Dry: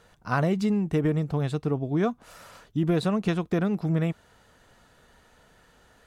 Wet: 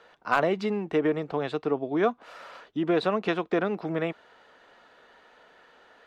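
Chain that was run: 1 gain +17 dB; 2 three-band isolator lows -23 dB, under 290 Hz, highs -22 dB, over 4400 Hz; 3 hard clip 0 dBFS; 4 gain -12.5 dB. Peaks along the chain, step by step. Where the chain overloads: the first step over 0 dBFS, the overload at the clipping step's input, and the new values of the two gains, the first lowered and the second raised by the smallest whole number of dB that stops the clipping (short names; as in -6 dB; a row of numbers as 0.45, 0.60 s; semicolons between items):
+4.5, +5.0, 0.0, -12.5 dBFS; step 1, 5.0 dB; step 1 +12 dB, step 4 -7.5 dB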